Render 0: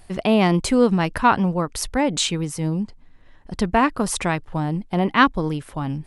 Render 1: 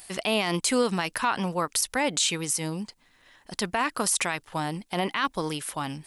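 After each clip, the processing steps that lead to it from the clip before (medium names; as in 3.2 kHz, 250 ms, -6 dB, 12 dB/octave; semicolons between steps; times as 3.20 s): tilt EQ +4 dB/octave; peak limiter -14.5 dBFS, peak gain reduction 16 dB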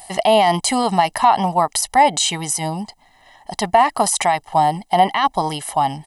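high-order bell 610 Hz +14.5 dB 1.2 oct; comb 1 ms, depth 93%; trim +2.5 dB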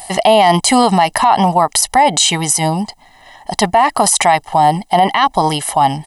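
loudness maximiser +9 dB; trim -1 dB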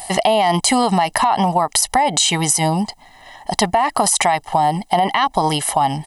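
compression, threshold -12 dBFS, peak gain reduction 6 dB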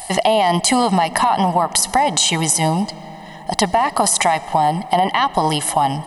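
reverberation RT60 5.6 s, pre-delay 30 ms, DRR 16.5 dB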